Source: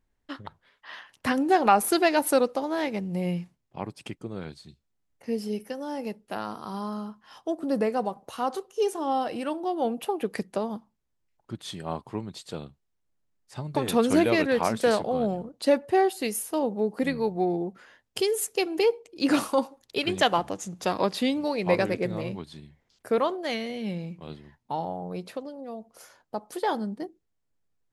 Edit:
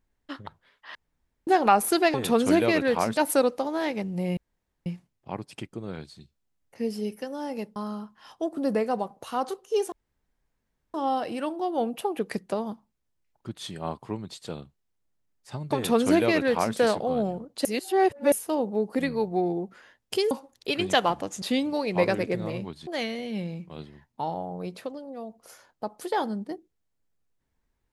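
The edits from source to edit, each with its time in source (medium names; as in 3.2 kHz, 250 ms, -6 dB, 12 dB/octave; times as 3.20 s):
0.95–1.47 s: room tone
3.34 s: insert room tone 0.49 s
6.24–6.82 s: delete
8.98 s: insert room tone 1.02 s
13.78–14.81 s: copy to 2.14 s
15.69–16.36 s: reverse
18.35–19.59 s: delete
20.70–21.13 s: delete
22.58–23.38 s: delete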